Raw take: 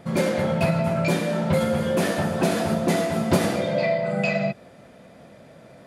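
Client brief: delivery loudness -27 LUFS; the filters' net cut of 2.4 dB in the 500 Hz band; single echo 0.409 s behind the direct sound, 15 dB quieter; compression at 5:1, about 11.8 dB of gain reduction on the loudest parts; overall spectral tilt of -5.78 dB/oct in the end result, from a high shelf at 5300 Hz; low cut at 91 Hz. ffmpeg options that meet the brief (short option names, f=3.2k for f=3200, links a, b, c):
-af "highpass=91,equalizer=f=500:t=o:g=-3,highshelf=f=5.3k:g=-5,acompressor=threshold=-31dB:ratio=5,aecho=1:1:409:0.178,volume=6.5dB"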